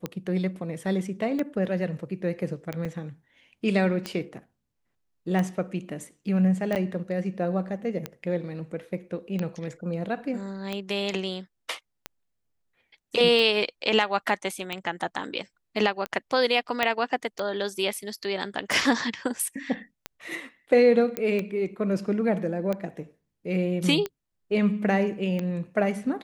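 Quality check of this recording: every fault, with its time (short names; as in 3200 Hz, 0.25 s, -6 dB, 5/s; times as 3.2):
tick 45 rpm -16 dBFS
2.85 gap 4.3 ms
6.75–6.76 gap 8.9 ms
16.83 pop -9 dBFS
21.17 pop -13 dBFS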